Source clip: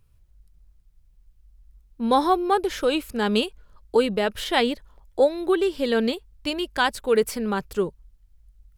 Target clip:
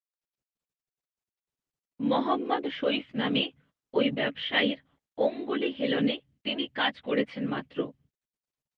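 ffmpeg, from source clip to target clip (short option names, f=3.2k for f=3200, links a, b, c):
-filter_complex "[0:a]afftfilt=real='hypot(re,im)*cos(2*PI*random(0))':imag='hypot(re,im)*sin(2*PI*random(1))':win_size=512:overlap=0.75,highpass=190,equalizer=f=260:t=q:w=4:g=9,equalizer=f=380:t=q:w=4:g=-8,equalizer=f=920:t=q:w=4:g=-5,equalizer=f=1.4k:t=q:w=4:g=-4,equalizer=f=2k:t=q:w=4:g=8,equalizer=f=3.1k:t=q:w=4:g=8,lowpass=f=3.4k:w=0.5412,lowpass=f=3.4k:w=1.3066,asplit=2[a][b];[b]adelay=14,volume=-5dB[c];[a][c]amix=inputs=2:normalize=0,agate=range=-32dB:threshold=-57dB:ratio=16:detection=peak" -ar 48000 -c:a libopus -b:a 32k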